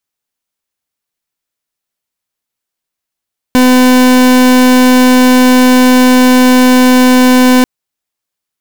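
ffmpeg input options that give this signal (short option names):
-f lavfi -i "aevalsrc='0.531*(2*lt(mod(253*t,1),0.39)-1)':d=4.09:s=44100"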